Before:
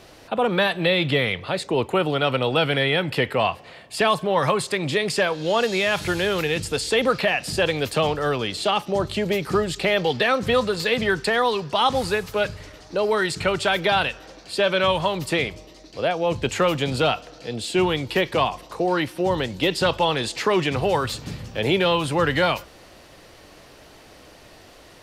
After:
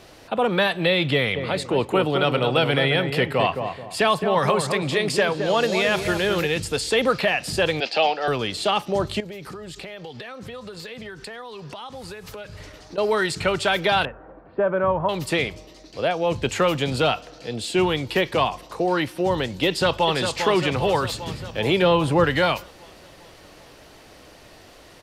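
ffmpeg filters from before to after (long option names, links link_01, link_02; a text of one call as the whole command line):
ffmpeg -i in.wav -filter_complex "[0:a]asplit=3[link_01][link_02][link_03];[link_01]afade=type=out:start_time=1.35:duration=0.02[link_04];[link_02]asplit=2[link_05][link_06];[link_06]adelay=216,lowpass=frequency=970:poles=1,volume=-5dB,asplit=2[link_07][link_08];[link_08]adelay=216,lowpass=frequency=970:poles=1,volume=0.36,asplit=2[link_09][link_10];[link_10]adelay=216,lowpass=frequency=970:poles=1,volume=0.36,asplit=2[link_11][link_12];[link_12]adelay=216,lowpass=frequency=970:poles=1,volume=0.36[link_13];[link_05][link_07][link_09][link_11][link_13]amix=inputs=5:normalize=0,afade=type=in:start_time=1.35:duration=0.02,afade=type=out:start_time=6.45:duration=0.02[link_14];[link_03]afade=type=in:start_time=6.45:duration=0.02[link_15];[link_04][link_14][link_15]amix=inputs=3:normalize=0,asettb=1/sr,asplit=3[link_16][link_17][link_18];[link_16]atrim=end=7.804[link_19];[link_17]atrim=start=7.8:end=8.28,asetpts=PTS-STARTPTS,afade=type=in:duration=0.004:curve=qsin,afade=type=out:start_time=0.476:duration=0.004:curve=qsin,highpass=frequency=260:width=0.5412,highpass=frequency=260:width=1.3066,equalizer=frequency=280:width_type=q:width=4:gain=-6,equalizer=frequency=420:width_type=q:width=4:gain=-6,equalizer=frequency=770:width_type=q:width=4:gain=10,equalizer=frequency=1100:width_type=q:width=4:gain=-9,equalizer=frequency=2600:width_type=q:width=4:gain=7,equalizer=frequency=4800:width_type=q:width=4:gain=8,lowpass=frequency=5400:width=0.5412,lowpass=frequency=5400:width=1.3066[link_20];[link_18]atrim=start=8.276[link_21];[link_19][link_20]acrossfade=duration=0.004:curve1=hsin:curve2=qsin[link_22];[link_22][link_21]acrossfade=duration=0.004:curve1=qsin:curve2=hsin,asettb=1/sr,asplit=3[link_23][link_24][link_25];[link_23]atrim=end=9.204[link_26];[link_24]atrim=start=9.2:end=12.98,asetpts=PTS-STARTPTS,afade=type=in:duration=0.004:curve=qsin,afade=type=out:start_time=3.776:duration=0.004:curve=qsin,acompressor=threshold=-33dB:ratio=12:attack=3.2:release=140:knee=1:detection=peak[link_27];[link_25]atrim=start=12.976[link_28];[link_26][link_27]acrossfade=duration=0.004:curve1=hsin:curve2=qsin[link_29];[link_29][link_28]acrossfade=duration=0.004:curve1=qsin:curve2=hsin,asettb=1/sr,asplit=3[link_30][link_31][link_32];[link_30]atrim=end=14.054[link_33];[link_31]atrim=start=14.05:end=15.09,asetpts=PTS-STARTPTS,afade=type=in:duration=0.004:curve=qsin,afade=type=out:start_time=1.036:duration=0.004:curve=qsin,lowpass=frequency=1400:width=0.5412,lowpass=frequency=1400:width=1.3066[link_34];[link_32]atrim=start=15.086[link_35];[link_33][link_34]acrossfade=duration=0.004:curve1=hsin:curve2=qsin[link_36];[link_36][link_35]acrossfade=duration=0.004:curve1=qsin:curve2=hsin,asplit=2[link_37][link_38];[link_38]afade=type=in:start_time=19.67:duration=0.01,afade=type=out:start_time=20.15:duration=0.01,aecho=0:1:400|800|1200|1600|2000|2400|2800|3200|3600:0.446684|0.290344|0.188724|0.12267|0.0797358|0.0518283|0.0336884|0.0218974|0.0142333[link_39];[link_37][link_39]amix=inputs=2:normalize=0,asettb=1/sr,asplit=3[link_40][link_41][link_42];[link_40]atrim=end=21.824[link_43];[link_41]atrim=start=21.82:end=22.24,asetpts=PTS-STARTPTS,afade=type=in:duration=0.004:curve=qsin,afade=type=out:start_time=0.416:duration=0.004:curve=qsin,tiltshelf=frequency=1400:gain=4.5[link_44];[link_42]atrim=start=22.236[link_45];[link_43][link_44]acrossfade=duration=0.004:curve1=hsin:curve2=qsin[link_46];[link_46][link_45]acrossfade=duration=0.004:curve1=qsin:curve2=hsin" out.wav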